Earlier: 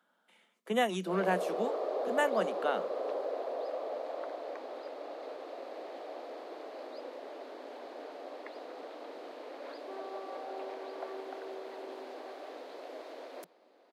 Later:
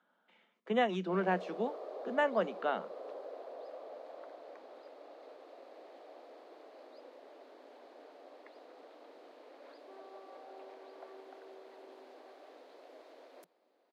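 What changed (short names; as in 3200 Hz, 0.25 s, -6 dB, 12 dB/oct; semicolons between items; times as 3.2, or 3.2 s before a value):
speech: add air absorption 190 m; background -10.0 dB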